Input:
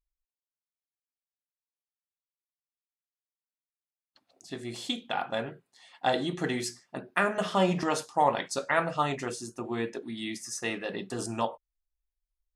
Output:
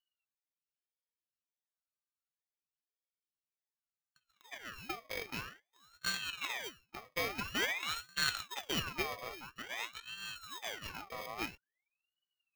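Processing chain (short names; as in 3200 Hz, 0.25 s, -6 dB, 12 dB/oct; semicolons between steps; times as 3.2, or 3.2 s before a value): sample sorter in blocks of 32 samples; fixed phaser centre 2300 Hz, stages 6; ring modulator with a swept carrier 1900 Hz, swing 55%, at 0.49 Hz; gain -4.5 dB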